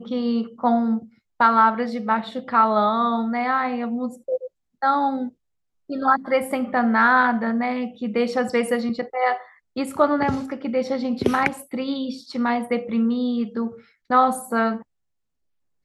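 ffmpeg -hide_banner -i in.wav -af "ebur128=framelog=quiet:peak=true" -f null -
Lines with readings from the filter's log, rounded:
Integrated loudness:
  I:         -22.1 LUFS
  Threshold: -32.4 LUFS
Loudness range:
  LRA:         3.6 LU
  Threshold: -42.6 LUFS
  LRA low:   -24.3 LUFS
  LRA high:  -20.7 LUFS
True peak:
  Peak:       -2.8 dBFS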